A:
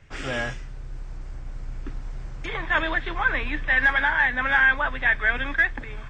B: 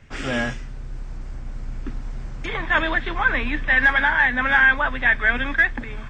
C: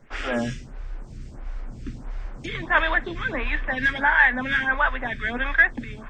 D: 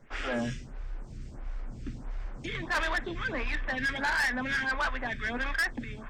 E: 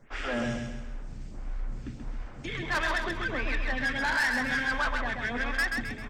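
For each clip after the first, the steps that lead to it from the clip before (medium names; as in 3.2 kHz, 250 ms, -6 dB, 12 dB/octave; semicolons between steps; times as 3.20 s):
peaking EQ 230 Hz +8.5 dB 0.32 oct; trim +3 dB
lamp-driven phase shifter 1.5 Hz; trim +1.5 dB
saturation -21 dBFS, distortion -8 dB; trim -3.5 dB
feedback delay 132 ms, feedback 43%, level -4.5 dB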